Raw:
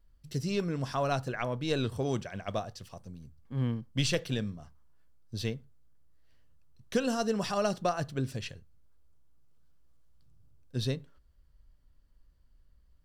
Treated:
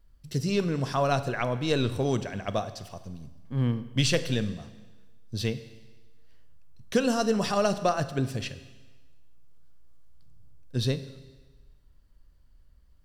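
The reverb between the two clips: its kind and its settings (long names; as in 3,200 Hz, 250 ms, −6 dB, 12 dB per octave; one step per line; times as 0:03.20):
four-comb reverb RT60 1.3 s, combs from 33 ms, DRR 12.5 dB
level +4.5 dB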